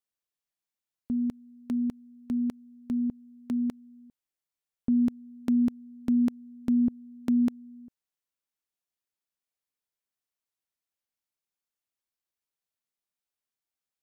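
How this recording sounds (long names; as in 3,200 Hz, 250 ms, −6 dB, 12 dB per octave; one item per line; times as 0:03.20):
background noise floor −92 dBFS
spectral slope −9.0 dB per octave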